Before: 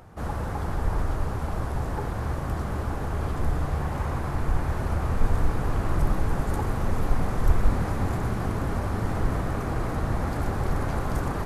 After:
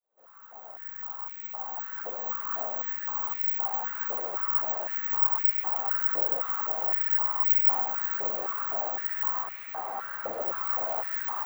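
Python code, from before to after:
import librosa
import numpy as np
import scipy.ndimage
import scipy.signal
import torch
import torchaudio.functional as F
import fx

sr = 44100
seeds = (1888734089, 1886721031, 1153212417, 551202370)

y = fx.fade_in_head(x, sr, length_s=2.59)
y = fx.chorus_voices(y, sr, voices=2, hz=0.97, base_ms=14, depth_ms=3.0, mix_pct=55)
y = (np.kron(scipy.signal.resample_poly(y, 1, 2), np.eye(2)[0]) * 2)[:len(y)]
y = fx.tilt_eq(y, sr, slope=-1.5, at=(9.43, 10.42))
y = fx.filter_held_highpass(y, sr, hz=3.9, low_hz=540.0, high_hz=2200.0)
y = y * 10.0 ** (-4.5 / 20.0)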